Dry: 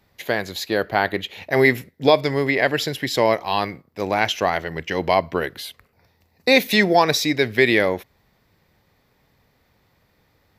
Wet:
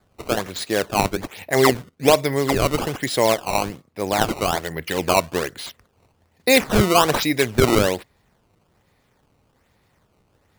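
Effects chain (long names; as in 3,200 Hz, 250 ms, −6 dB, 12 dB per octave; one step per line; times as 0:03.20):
sample-and-hold swept by an LFO 15×, swing 160% 1.2 Hz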